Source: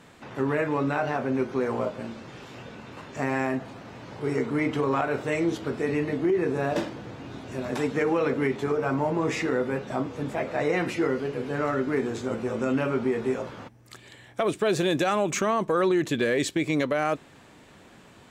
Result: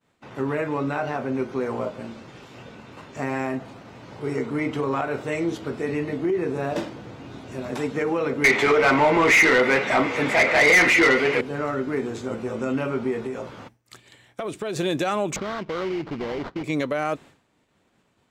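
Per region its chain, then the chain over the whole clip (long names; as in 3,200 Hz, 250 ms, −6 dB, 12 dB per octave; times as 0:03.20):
0:08.44–0:11.41: parametric band 2,100 Hz +14 dB 0.48 octaves + mid-hump overdrive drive 21 dB, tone 5,600 Hz, clips at −8 dBFS
0:13.26–0:14.76: downward compressor 4 to 1, threshold −26 dBFS + one half of a high-frequency compander encoder only
0:15.36–0:16.64: sample-rate reduction 2,600 Hz, jitter 20% + downward compressor 1.5 to 1, threshold −31 dBFS + high-frequency loss of the air 210 metres
whole clip: downward expander −41 dBFS; notch filter 1,700 Hz, Q 23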